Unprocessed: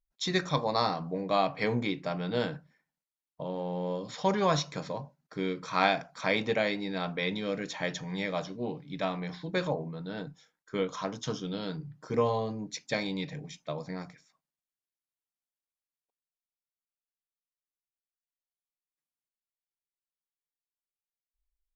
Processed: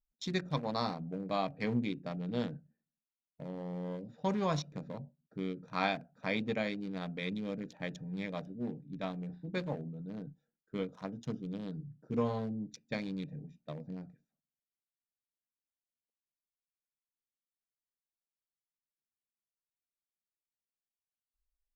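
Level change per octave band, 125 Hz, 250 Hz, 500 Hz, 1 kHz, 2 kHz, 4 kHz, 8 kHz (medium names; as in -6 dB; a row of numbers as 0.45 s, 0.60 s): -3.0 dB, -2.5 dB, -7.5 dB, -8.0 dB, -8.0 dB, -9.0 dB, no reading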